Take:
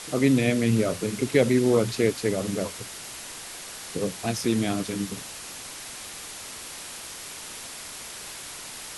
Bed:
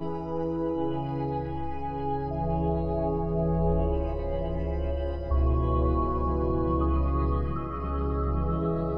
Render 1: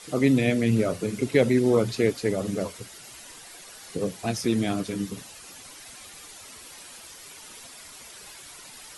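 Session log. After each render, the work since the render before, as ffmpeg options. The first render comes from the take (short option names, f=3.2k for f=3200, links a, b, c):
-af "afftdn=nr=10:nf=-40"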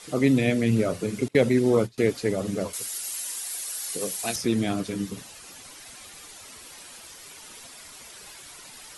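-filter_complex "[0:a]asettb=1/sr,asplit=3[a][b][c];[a]atrim=end=1.284[d];[b]atrim=start=1.28:end=1.98,asetpts=PTS-STARTPTS,afade=t=in:d=0.004:c=qsin,afade=t=out:st=0.696:d=0.004:c=qsin,agate=range=-23dB:threshold=-27dB:ratio=16:release=100:detection=peak[e];[c]atrim=start=1.976[f];[d][e]acrossfade=d=0.004:c1=hsin:c2=qsin[g];[g][f]acrossfade=d=0.004:c1=qsin:c2=hsin,asettb=1/sr,asplit=3[h][i][j];[h]atrim=end=2.734[k];[i]atrim=start=2.73:end=4.36,asetpts=PTS-STARTPTS,afade=t=in:d=0.004:c=qsin,afade=t=out:st=1.626:d=0.004:c=qsin,aemphasis=mode=production:type=riaa[l];[j]atrim=start=4.356[m];[k][l]acrossfade=d=0.004:c1=hsin:c2=qsin[n];[n][m]acrossfade=d=0.004:c1=qsin:c2=hsin"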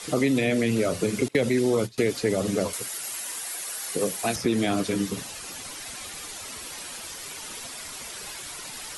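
-filter_complex "[0:a]asplit=2[a][b];[b]alimiter=limit=-16.5dB:level=0:latency=1:release=20,volume=2dB[c];[a][c]amix=inputs=2:normalize=0,acrossover=split=300|2500[d][e][f];[d]acompressor=threshold=-29dB:ratio=4[g];[e]acompressor=threshold=-23dB:ratio=4[h];[f]acompressor=threshold=-33dB:ratio=4[i];[g][h][i]amix=inputs=3:normalize=0"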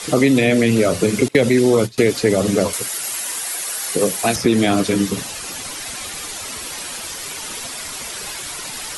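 -af "volume=8.5dB"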